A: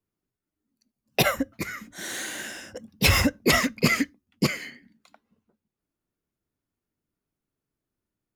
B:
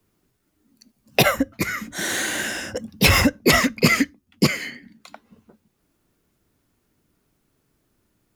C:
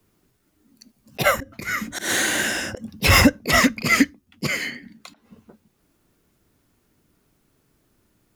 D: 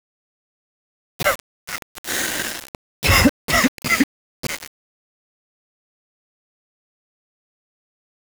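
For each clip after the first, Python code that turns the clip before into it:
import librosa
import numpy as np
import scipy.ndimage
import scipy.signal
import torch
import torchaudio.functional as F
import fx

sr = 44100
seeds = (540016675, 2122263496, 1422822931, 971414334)

y1 = fx.band_squash(x, sr, depth_pct=40)
y1 = y1 * librosa.db_to_amplitude(5.5)
y2 = fx.auto_swell(y1, sr, attack_ms=123.0)
y2 = y2 * librosa.db_to_amplitude(3.5)
y3 = np.where(np.abs(y2) >= 10.0 ** (-20.0 / 20.0), y2, 0.0)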